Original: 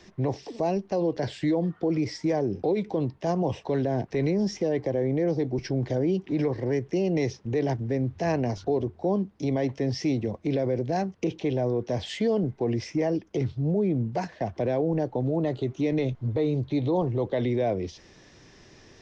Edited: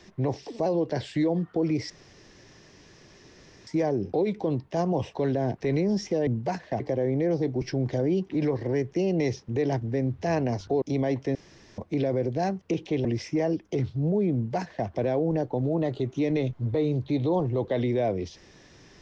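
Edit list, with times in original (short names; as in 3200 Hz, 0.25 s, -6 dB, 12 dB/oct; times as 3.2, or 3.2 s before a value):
0.66–0.93 cut
2.17 insert room tone 1.77 s
8.79–9.35 cut
9.88–10.31 room tone
11.58–12.67 cut
13.96–14.49 copy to 4.77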